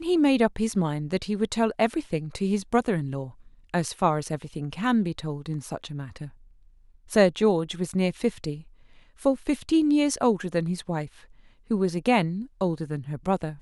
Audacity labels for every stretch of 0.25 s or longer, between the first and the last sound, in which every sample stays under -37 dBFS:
3.300000	3.740000	silence
6.280000	7.100000	silence
8.610000	9.210000	silence
11.070000	11.710000	silence